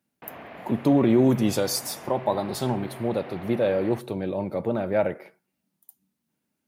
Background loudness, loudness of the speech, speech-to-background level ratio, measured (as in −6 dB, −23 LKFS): −42.5 LKFS, −25.0 LKFS, 17.5 dB